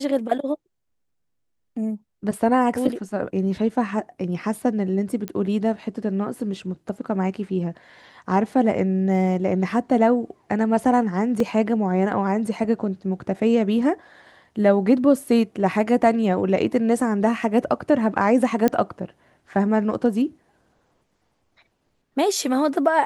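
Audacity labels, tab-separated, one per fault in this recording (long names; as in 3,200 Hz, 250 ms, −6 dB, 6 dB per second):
5.280000	5.280000	click −15 dBFS
11.400000	11.400000	drop-out 2.6 ms
18.680000	18.680000	click −8 dBFS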